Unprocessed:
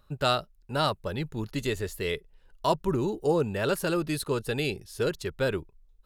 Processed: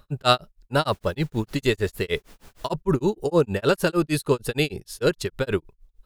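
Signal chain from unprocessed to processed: 0.91–2.67 added noise pink -58 dBFS; tremolo 6.5 Hz, depth 100%; gain +9 dB

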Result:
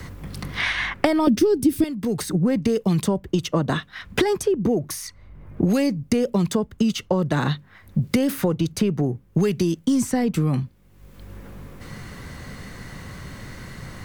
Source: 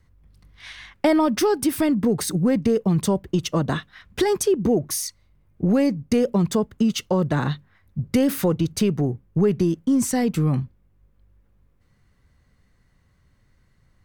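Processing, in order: 1.27–1.84 resonant low shelf 560 Hz +13 dB, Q 1.5; three-band squash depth 100%; gain -1.5 dB

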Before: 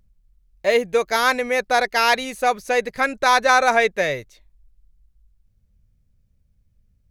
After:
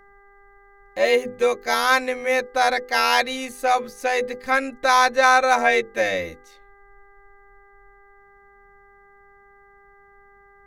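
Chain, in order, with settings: granular stretch 1.5×, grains 23 ms; notches 50/100/150/200/250/300/350/400/450/500 Hz; buzz 400 Hz, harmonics 5, -53 dBFS -1 dB/oct

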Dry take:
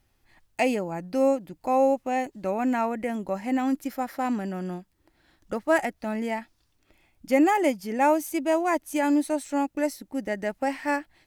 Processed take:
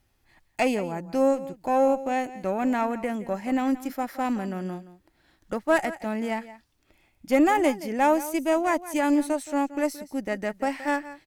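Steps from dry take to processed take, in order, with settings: echo 0.173 s -15.5 dB; added harmonics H 4 -23 dB, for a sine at -10 dBFS

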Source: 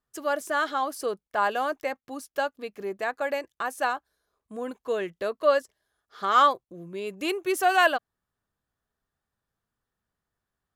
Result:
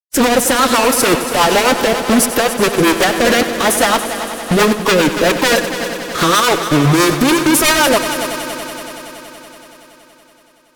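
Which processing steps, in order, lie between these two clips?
gate with hold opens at -48 dBFS; reverb removal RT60 1.4 s; bell 3500 Hz -6.5 dB 2.2 oct; in parallel at -0.5 dB: compressor 16:1, threshold -35 dBFS, peak gain reduction 19.5 dB; on the sum: fuzz box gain 49 dB, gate -45 dBFS; formant-preserving pitch shift -3 st; rotary speaker horn 7.5 Hz; on a send: multi-head echo 94 ms, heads first and third, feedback 74%, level -13 dB; on the sum: maximiser +7.5 dB; gain -1 dB

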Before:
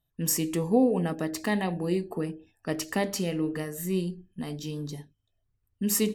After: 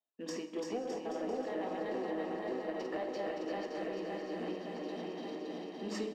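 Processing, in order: regenerating reverse delay 0.283 s, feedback 76%, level -1.5 dB; steep high-pass 230 Hz 36 dB/oct; gate -29 dBFS, range -10 dB; LPF 4400 Hz 24 dB/oct; bell 680 Hz +8.5 dB 1.4 oct; compressor 6:1, threshold -38 dBFS, peak gain reduction 24 dB; sample leveller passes 1; flange 0.34 Hz, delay 8.1 ms, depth 9.3 ms, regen -62%; bouncing-ball echo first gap 0.34 s, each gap 0.8×, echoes 5; Schroeder reverb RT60 0.88 s, combs from 30 ms, DRR 11 dB; gain +1 dB

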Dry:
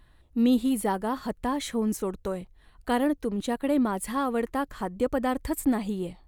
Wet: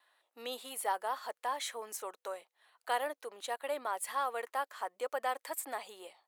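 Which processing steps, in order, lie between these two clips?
gate with hold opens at -52 dBFS; HPF 590 Hz 24 dB/oct; gain -3.5 dB

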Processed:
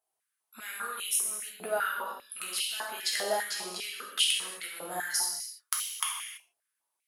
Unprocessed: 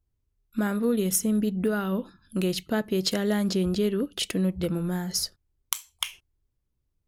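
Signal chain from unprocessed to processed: bell 10000 Hz +14 dB 0.49 oct; compressor, threshold -28 dBFS, peak gain reduction 17 dB; non-linear reverb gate 0.36 s falling, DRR -3 dB; stepped high-pass 5 Hz 730–2800 Hz; gain -2.5 dB

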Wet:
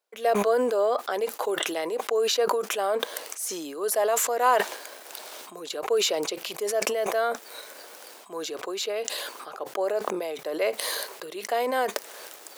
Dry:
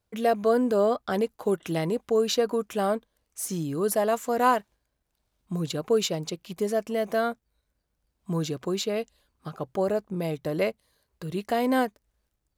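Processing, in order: HPF 410 Hz 24 dB/oct; sustainer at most 25 dB/s

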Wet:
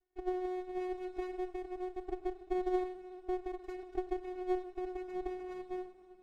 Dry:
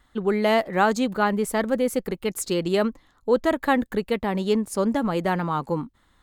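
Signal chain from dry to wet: switching dead time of 0.24 ms; compressor 3:1, threshold -24 dBFS, peak gain reduction 7.5 dB; rotary speaker horn 0.65 Hz, later 8 Hz, at 3.34; vocoder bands 8, square 366 Hz; reverb RT60 2.9 s, pre-delay 6 ms, DRR 8.5 dB; running maximum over 33 samples; gain -6.5 dB

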